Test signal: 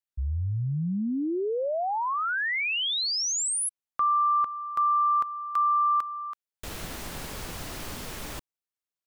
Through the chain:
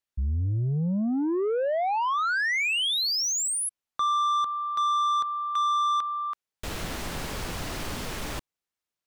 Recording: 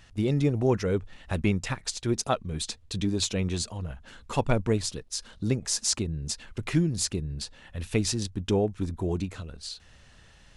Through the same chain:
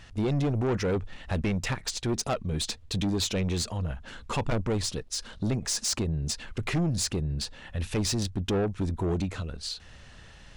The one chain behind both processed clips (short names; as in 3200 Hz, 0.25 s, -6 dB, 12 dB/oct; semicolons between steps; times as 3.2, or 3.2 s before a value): high shelf 8800 Hz -8 dB; in parallel at -1.5 dB: limiter -22 dBFS; on the sum: soft clip -22.5 dBFS